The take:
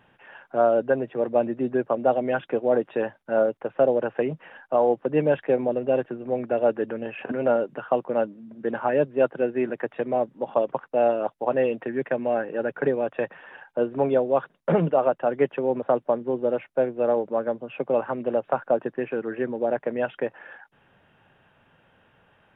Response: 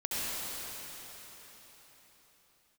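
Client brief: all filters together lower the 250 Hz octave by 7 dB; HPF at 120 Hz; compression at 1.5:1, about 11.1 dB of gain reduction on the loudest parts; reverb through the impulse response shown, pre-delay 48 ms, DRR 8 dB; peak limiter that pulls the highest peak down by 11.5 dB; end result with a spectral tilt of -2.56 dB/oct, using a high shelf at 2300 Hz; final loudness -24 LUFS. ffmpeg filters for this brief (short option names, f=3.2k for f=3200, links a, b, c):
-filter_complex "[0:a]highpass=120,equalizer=f=250:t=o:g=-9,highshelf=f=2.3k:g=-8,acompressor=threshold=-50dB:ratio=1.5,alimiter=level_in=7.5dB:limit=-24dB:level=0:latency=1,volume=-7.5dB,asplit=2[a][b];[1:a]atrim=start_sample=2205,adelay=48[c];[b][c]afir=irnorm=-1:irlink=0,volume=-16dB[d];[a][d]amix=inputs=2:normalize=0,volume=17.5dB"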